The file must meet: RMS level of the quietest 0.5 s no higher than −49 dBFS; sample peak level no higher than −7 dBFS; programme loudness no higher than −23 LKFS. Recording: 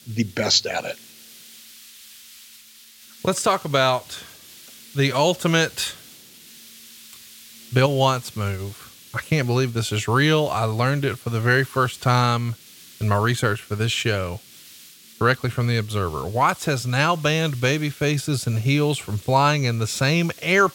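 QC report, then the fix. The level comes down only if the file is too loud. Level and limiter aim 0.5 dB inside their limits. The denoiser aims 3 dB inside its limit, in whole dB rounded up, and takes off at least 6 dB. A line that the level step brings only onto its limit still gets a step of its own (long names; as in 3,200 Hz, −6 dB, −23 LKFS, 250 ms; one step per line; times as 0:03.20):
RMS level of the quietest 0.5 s −48 dBFS: out of spec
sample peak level −4.0 dBFS: out of spec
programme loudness −21.5 LKFS: out of spec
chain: level −2 dB
brickwall limiter −7.5 dBFS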